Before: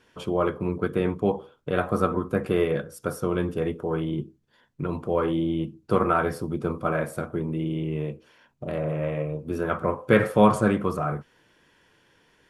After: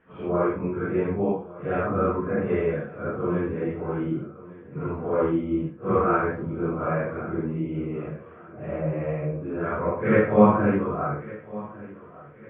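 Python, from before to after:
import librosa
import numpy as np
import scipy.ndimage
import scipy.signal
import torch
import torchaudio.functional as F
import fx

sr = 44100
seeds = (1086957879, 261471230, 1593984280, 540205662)

y = fx.phase_scramble(x, sr, seeds[0], window_ms=200)
y = scipy.signal.sosfilt(scipy.signal.butter(6, 2400.0, 'lowpass', fs=sr, output='sos'), y)
y = fx.echo_feedback(y, sr, ms=1154, feedback_pct=41, wet_db=-19)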